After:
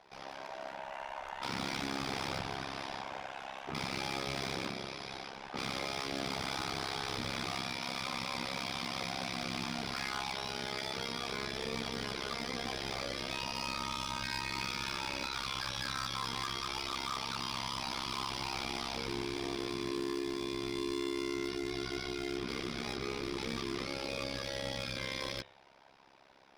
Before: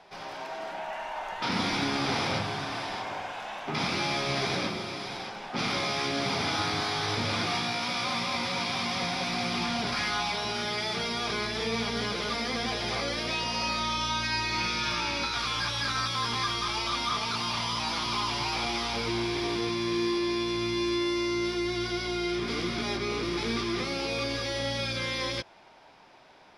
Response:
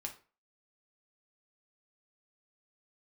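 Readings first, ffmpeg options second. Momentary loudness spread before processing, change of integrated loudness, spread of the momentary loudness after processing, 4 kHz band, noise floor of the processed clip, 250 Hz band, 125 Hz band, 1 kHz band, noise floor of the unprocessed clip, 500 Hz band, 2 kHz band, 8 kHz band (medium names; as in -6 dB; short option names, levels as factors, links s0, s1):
6 LU, -8.0 dB, 5 LU, -8.0 dB, -49 dBFS, -8.0 dB, -8.5 dB, -8.0 dB, -41 dBFS, -7.5 dB, -8.0 dB, -6.5 dB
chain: -af "bandreject=f=101.3:t=h:w=4,bandreject=f=202.6:t=h:w=4,bandreject=f=303.9:t=h:w=4,bandreject=f=405.2:t=h:w=4,bandreject=f=506.5:t=h:w=4,bandreject=f=607.8:t=h:w=4,bandreject=f=709.1:t=h:w=4,bandreject=f=810.4:t=h:w=4,bandreject=f=911.7:t=h:w=4,bandreject=f=1013:t=h:w=4,bandreject=f=1114.3:t=h:w=4,bandreject=f=1215.6:t=h:w=4,bandreject=f=1316.9:t=h:w=4,bandreject=f=1418.2:t=h:w=4,bandreject=f=1519.5:t=h:w=4,bandreject=f=1620.8:t=h:w=4,bandreject=f=1722.1:t=h:w=4,bandreject=f=1823.4:t=h:w=4,bandreject=f=1924.7:t=h:w=4,bandreject=f=2026:t=h:w=4,bandreject=f=2127.3:t=h:w=4,bandreject=f=2228.6:t=h:w=4,bandreject=f=2329.9:t=h:w=4,bandreject=f=2431.2:t=h:w=4,bandreject=f=2532.5:t=h:w=4,bandreject=f=2633.8:t=h:w=4,bandreject=f=2735.1:t=h:w=4,bandreject=f=2836.4:t=h:w=4,bandreject=f=2937.7:t=h:w=4,bandreject=f=3039:t=h:w=4,bandreject=f=3140.3:t=h:w=4,bandreject=f=3241.6:t=h:w=4,bandreject=f=3342.9:t=h:w=4,bandreject=f=3444.2:t=h:w=4,bandreject=f=3545.5:t=h:w=4,bandreject=f=3646.8:t=h:w=4,bandreject=f=3748.1:t=h:w=4,bandreject=f=3849.4:t=h:w=4,bandreject=f=3950.7:t=h:w=4,asoftclip=type=hard:threshold=0.0447,tremolo=f=67:d=0.947,volume=0.75"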